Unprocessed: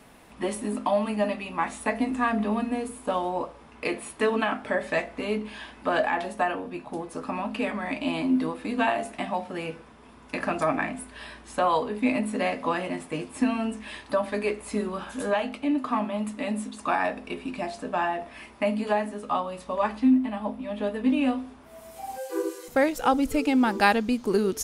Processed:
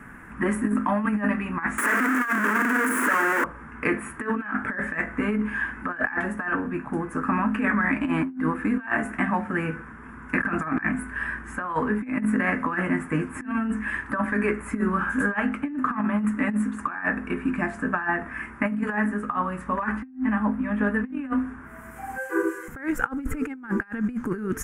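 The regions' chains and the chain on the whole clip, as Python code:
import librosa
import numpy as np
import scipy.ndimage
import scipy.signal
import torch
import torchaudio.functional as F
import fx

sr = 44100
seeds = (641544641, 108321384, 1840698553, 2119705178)

y = fx.chain(x, sr, fx.clip_1bit(),
    fx.highpass(hz=280.0, slope=24),
    fx.notch(hz=790.0, q=6.3), at=(1.78, 3.44))
y = fx.curve_eq(y, sr, hz=(210.0, 310.0, 640.0, 1600.0, 4100.0, 7200.0), db=(0, -3, -15, 8, -30, -13))
y = fx.over_compress(y, sr, threshold_db=-31.0, ratio=-0.5)
y = y * librosa.db_to_amplitude(7.0)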